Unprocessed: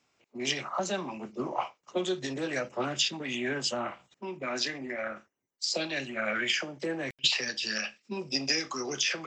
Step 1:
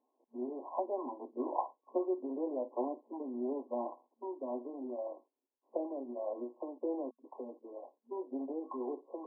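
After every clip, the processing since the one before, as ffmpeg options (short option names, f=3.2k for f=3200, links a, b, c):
-af "afftfilt=real='re*between(b*sr/4096,230,1100)':imag='im*between(b*sr/4096,230,1100)':win_size=4096:overlap=0.75,volume=-2.5dB"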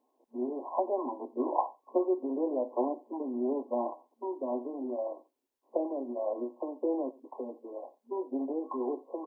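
-af "aecho=1:1:89:0.0891,volume=5.5dB"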